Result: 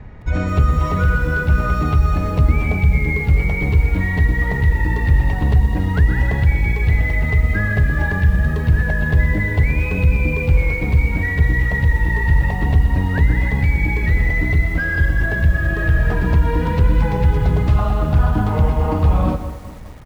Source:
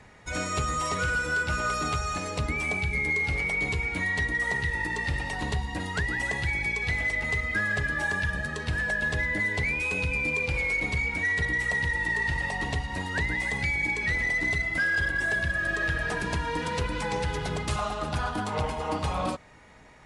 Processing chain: RIAA curve playback; in parallel at -0.5 dB: limiter -16.5 dBFS, peak gain reduction 11 dB; on the sum: air absorption 97 m; on a send: feedback echo 0.124 s, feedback 29%, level -12 dB; on the sum: lo-fi delay 0.207 s, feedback 55%, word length 6-bit, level -13 dB

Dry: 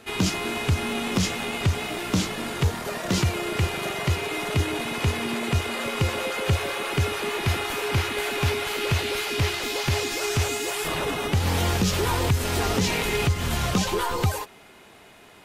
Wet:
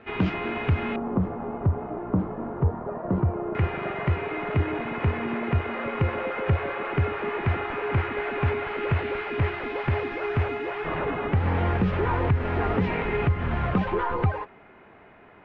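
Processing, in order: LPF 2400 Hz 24 dB/oct, from 0.96 s 1100 Hz, from 3.55 s 2100 Hz

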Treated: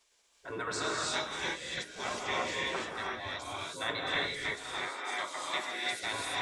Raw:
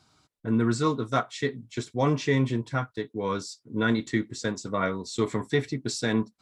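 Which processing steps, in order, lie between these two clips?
spectral gate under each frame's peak -15 dB weak; 4.55–5.92 Bessel high-pass 390 Hz, order 2; non-linear reverb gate 0.37 s rising, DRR -4 dB

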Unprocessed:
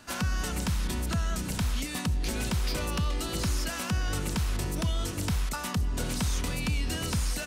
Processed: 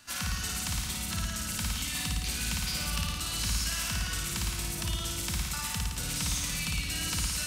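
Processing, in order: passive tone stack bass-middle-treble 5-5-5; flutter echo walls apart 9.5 m, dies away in 1.4 s; gain +7 dB

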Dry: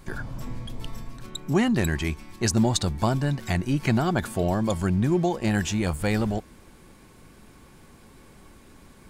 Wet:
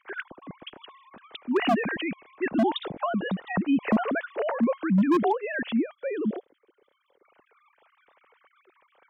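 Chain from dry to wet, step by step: sine-wave speech; spectral gain 5.73–7.24, 600–3000 Hz -10 dB; wavefolder -15 dBFS

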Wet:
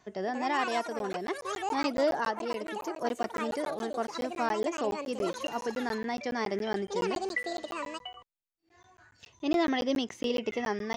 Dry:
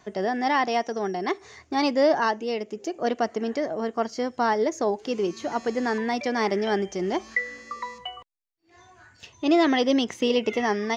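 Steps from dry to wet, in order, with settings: echoes that change speed 0.234 s, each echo +6 st, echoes 2, each echo -6 dB; crackling interface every 0.14 s, samples 512, zero, from 0.99; gain -7 dB

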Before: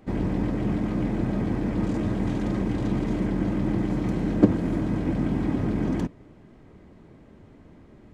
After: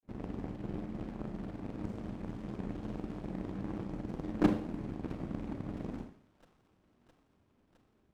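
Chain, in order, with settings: grains, spray 36 ms; added harmonics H 3 -13 dB, 7 -36 dB, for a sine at -13 dBFS; thin delay 0.662 s, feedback 75%, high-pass 1800 Hz, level -15 dB; Schroeder reverb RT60 0.53 s, combs from 29 ms, DRR 5 dB; running maximum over 17 samples; gain -7.5 dB

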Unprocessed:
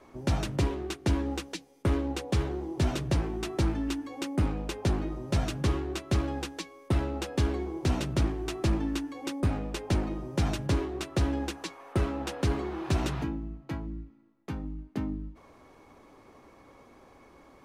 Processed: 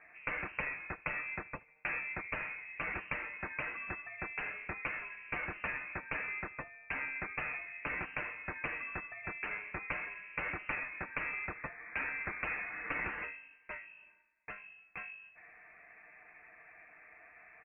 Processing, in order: HPF 770 Hz 12 dB/oct; comb 7 ms, depth 49%; reverse; upward compressor, threshold -54 dBFS; reverse; darkening echo 74 ms, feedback 58%, low-pass 1700 Hz, level -21.5 dB; inverted band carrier 2900 Hz; gain +1 dB

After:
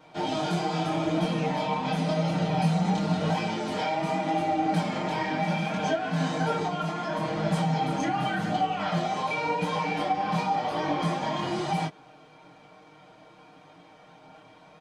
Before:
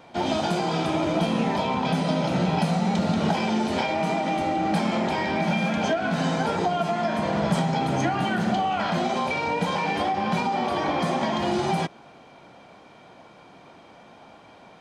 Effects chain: chorus voices 2, 0.87 Hz, delay 22 ms, depth 4.6 ms; comb 6.5 ms, depth 87%; gain -3 dB

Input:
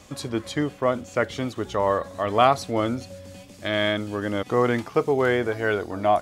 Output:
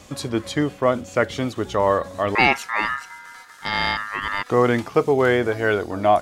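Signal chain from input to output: 2.35–4.5 ring modulator 1500 Hz; gain +3.5 dB

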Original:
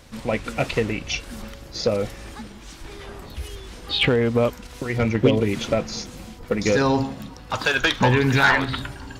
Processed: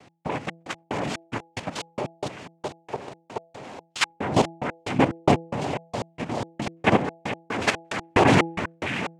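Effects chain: flange 0.39 Hz, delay 1.5 ms, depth 1.9 ms, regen +8%; noise vocoder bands 4; echo with dull and thin repeats by turns 0.213 s, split 1800 Hz, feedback 79%, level -4 dB; step gate "x..xxx.." 182 bpm -60 dB; dynamic EQ 790 Hz, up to -3 dB, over -36 dBFS, Q 0.73; level quantiser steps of 12 dB; tone controls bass -1 dB, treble -12 dB; de-hum 166.1 Hz, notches 5; gain +9 dB

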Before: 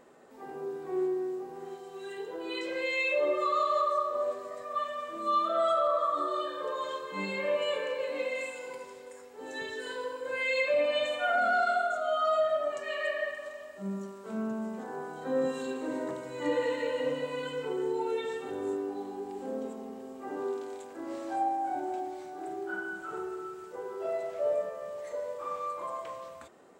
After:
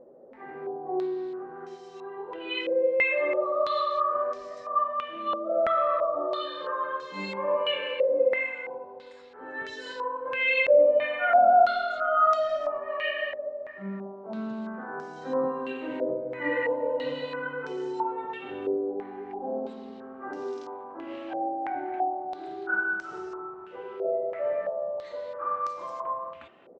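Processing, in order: air absorption 63 m; notch 450 Hz, Q 12; speakerphone echo 0.21 s, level -17 dB; stepped low-pass 3 Hz 530–5600 Hz

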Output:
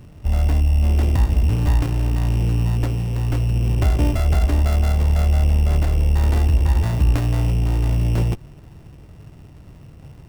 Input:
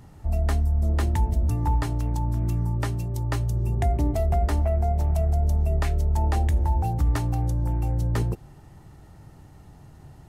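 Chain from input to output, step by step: sample sorter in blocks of 16 samples; running maximum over 33 samples; gain +6 dB

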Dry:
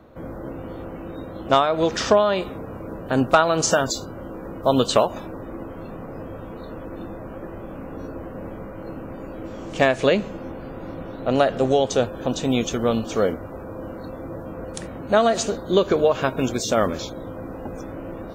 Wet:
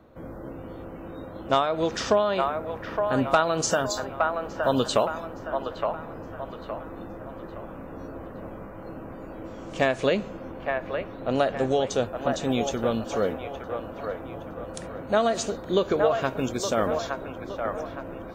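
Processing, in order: on a send: band-limited delay 0.866 s, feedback 40%, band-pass 1100 Hz, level -3 dB; on the sum: gain -5 dB

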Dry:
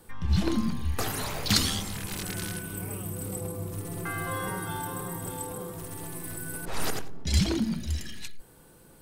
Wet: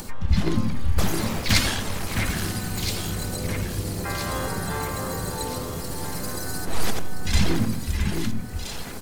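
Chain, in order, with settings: upward compressor, threshold -30 dBFS; harmoniser -12 st -1 dB, -3 st -8 dB, +3 st -7 dB; echo with dull and thin repeats by turns 0.661 s, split 2500 Hz, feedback 69%, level -4 dB

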